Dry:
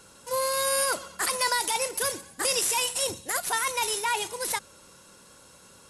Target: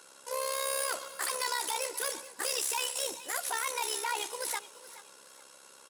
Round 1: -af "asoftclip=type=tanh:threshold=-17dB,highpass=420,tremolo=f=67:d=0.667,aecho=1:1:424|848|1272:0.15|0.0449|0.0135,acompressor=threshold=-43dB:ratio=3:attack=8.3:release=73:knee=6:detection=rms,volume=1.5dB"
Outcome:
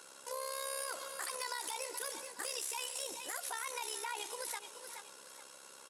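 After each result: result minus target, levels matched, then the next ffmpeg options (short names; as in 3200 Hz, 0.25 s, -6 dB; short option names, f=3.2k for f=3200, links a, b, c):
compressor: peak gain reduction +13.5 dB; soft clip: distortion -12 dB
-af "asoftclip=type=tanh:threshold=-17dB,highpass=420,tremolo=f=67:d=0.667,aecho=1:1:424|848|1272:0.15|0.0449|0.0135,volume=1.5dB"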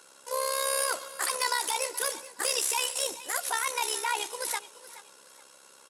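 soft clip: distortion -12 dB
-af "asoftclip=type=tanh:threshold=-27dB,highpass=420,tremolo=f=67:d=0.667,aecho=1:1:424|848|1272:0.15|0.0449|0.0135,volume=1.5dB"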